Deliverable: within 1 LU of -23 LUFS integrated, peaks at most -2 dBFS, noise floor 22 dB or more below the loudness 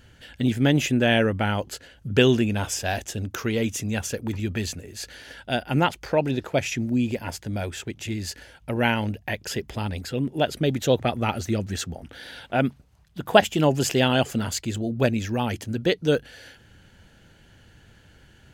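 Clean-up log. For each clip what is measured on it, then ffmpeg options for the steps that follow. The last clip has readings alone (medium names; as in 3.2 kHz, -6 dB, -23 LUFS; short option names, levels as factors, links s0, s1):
loudness -25.0 LUFS; peak level -1.5 dBFS; loudness target -23.0 LUFS
-> -af "volume=1.26,alimiter=limit=0.794:level=0:latency=1"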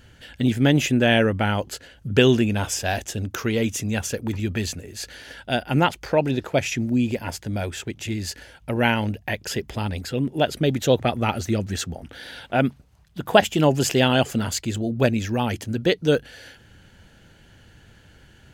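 loudness -23.0 LUFS; peak level -2.0 dBFS; noise floor -53 dBFS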